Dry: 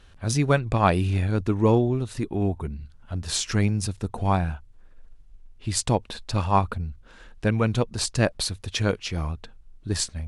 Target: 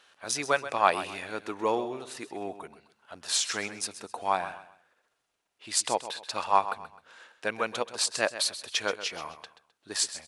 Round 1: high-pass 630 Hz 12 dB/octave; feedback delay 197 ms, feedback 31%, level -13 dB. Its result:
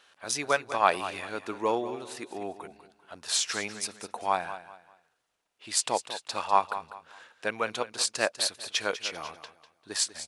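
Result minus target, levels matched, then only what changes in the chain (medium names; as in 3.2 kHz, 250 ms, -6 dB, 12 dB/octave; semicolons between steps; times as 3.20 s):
echo 67 ms late
change: feedback delay 130 ms, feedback 31%, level -13 dB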